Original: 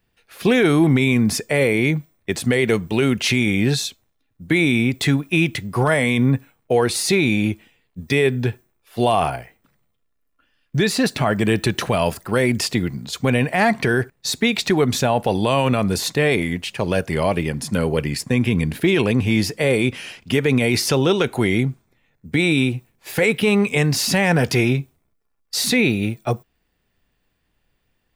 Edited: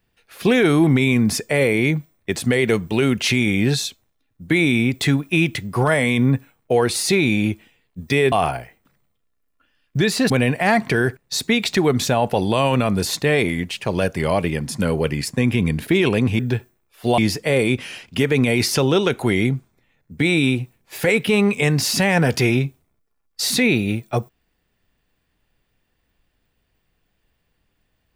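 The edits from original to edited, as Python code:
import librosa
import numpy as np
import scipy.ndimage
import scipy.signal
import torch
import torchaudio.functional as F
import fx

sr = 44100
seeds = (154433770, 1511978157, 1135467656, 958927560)

y = fx.edit(x, sr, fx.move(start_s=8.32, length_s=0.79, to_s=19.32),
    fx.cut(start_s=11.09, length_s=2.14), tone=tone)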